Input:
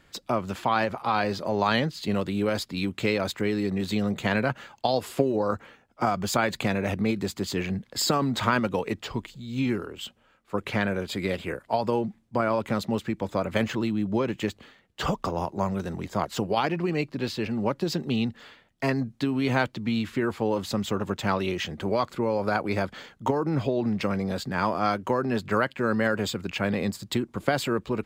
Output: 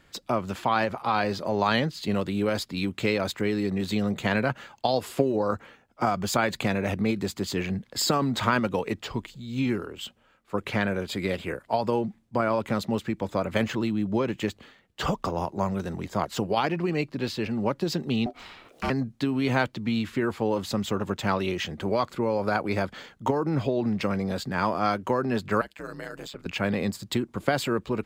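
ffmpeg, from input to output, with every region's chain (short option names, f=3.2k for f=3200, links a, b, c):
-filter_complex "[0:a]asettb=1/sr,asplit=3[a][b][c];[a]atrim=end=18.264[d];[b]atrim=start=18.26:end=18.9,asetpts=PTS-STARTPTS,afade=t=in:d=0.004:c=qsin,afade=t=out:st=0.636:d=0.004:c=qsin,acompressor=mode=upward:threshold=-32dB:ratio=2.5:attack=3.2:release=140:knee=2.83:detection=peak,aeval=exprs='val(0)*sin(2*PI*490*n/s)':c=same[e];[c]atrim=start=18.896[f];[d][e]acrossfade=d=0.004:c1=hsin:c2=qsin[g];[g][f]acrossfade=d=0.004:c1=qsin:c2=hsin,asettb=1/sr,asplit=3[h][i][j];[h]atrim=end=25.614[k];[i]atrim=start=25.61:end=26.46,asetpts=PTS-STARTPTS,afade=t=in:d=0.004:c=qsin,afade=t=out:st=0.846:d=0.004:c=qsin,bass=f=250:g=-8,treble=f=4k:g=3,acrossover=split=180|4200[l][m][n];[l]acompressor=threshold=-46dB:ratio=4[o];[m]acompressor=threshold=-34dB:ratio=4[p];[n]acompressor=threshold=-47dB:ratio=4[q];[o][p][q]amix=inputs=3:normalize=0,aeval=exprs='val(0)*sin(2*PI*69*n/s)':c=same[r];[j]atrim=start=26.456[s];[k][r]acrossfade=d=0.004:c1=hsin:c2=qsin[t];[t][s]acrossfade=d=0.004:c1=qsin:c2=hsin"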